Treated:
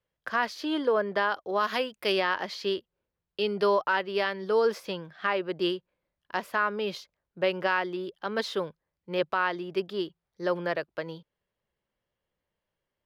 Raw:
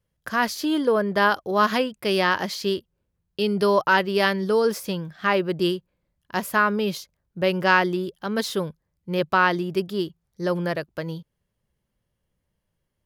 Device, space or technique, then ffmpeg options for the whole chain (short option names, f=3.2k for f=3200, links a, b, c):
DJ mixer with the lows and highs turned down: -filter_complex "[0:a]acrossover=split=330 4700:gain=0.251 1 0.158[a][b][c];[a][b][c]amix=inputs=3:normalize=0,alimiter=limit=-13.5dB:level=0:latency=1:release=341,asplit=3[d][e][f];[d]afade=t=out:st=1.59:d=0.02[g];[e]aemphasis=mode=production:type=50kf,afade=t=in:st=1.59:d=0.02,afade=t=out:st=2.11:d=0.02[h];[f]afade=t=in:st=2.11:d=0.02[i];[g][h][i]amix=inputs=3:normalize=0,volume=-1.5dB"